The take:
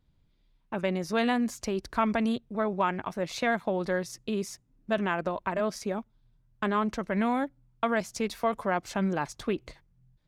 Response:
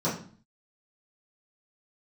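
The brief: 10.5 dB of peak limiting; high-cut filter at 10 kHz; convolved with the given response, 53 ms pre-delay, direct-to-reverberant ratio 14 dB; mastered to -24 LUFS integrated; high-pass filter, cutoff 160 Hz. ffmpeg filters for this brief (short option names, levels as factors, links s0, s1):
-filter_complex "[0:a]highpass=160,lowpass=10000,alimiter=limit=0.0668:level=0:latency=1,asplit=2[s0][s1];[1:a]atrim=start_sample=2205,adelay=53[s2];[s1][s2]afir=irnorm=-1:irlink=0,volume=0.0596[s3];[s0][s3]amix=inputs=2:normalize=0,volume=2.99"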